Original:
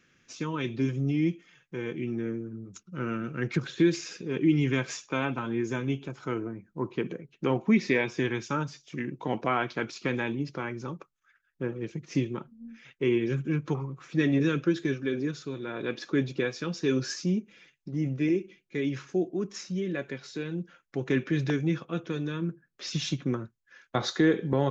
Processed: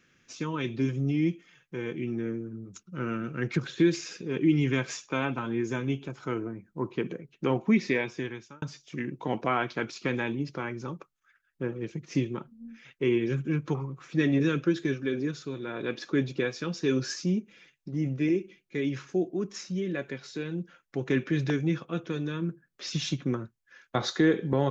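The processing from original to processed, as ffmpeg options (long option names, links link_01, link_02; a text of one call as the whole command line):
ffmpeg -i in.wav -filter_complex "[0:a]asplit=2[link_01][link_02];[link_01]atrim=end=8.62,asetpts=PTS-STARTPTS,afade=type=out:start_time=7.49:duration=1.13:curve=qsin[link_03];[link_02]atrim=start=8.62,asetpts=PTS-STARTPTS,afade=type=in:duration=0.004:curve=hsin[link_04];[link_03][link_04]concat=n=2:v=0:a=1" out.wav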